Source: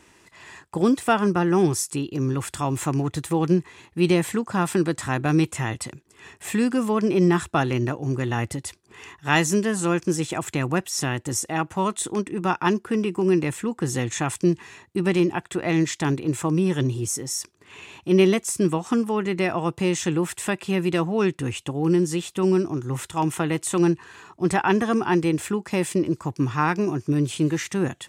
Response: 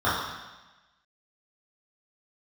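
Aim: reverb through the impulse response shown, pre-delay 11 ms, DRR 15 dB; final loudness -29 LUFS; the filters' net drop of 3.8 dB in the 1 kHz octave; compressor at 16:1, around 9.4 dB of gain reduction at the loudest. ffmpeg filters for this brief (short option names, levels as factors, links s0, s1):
-filter_complex "[0:a]equalizer=f=1000:t=o:g=-5,acompressor=threshold=0.0708:ratio=16,asplit=2[s0][s1];[1:a]atrim=start_sample=2205,adelay=11[s2];[s1][s2]afir=irnorm=-1:irlink=0,volume=0.0224[s3];[s0][s3]amix=inputs=2:normalize=0"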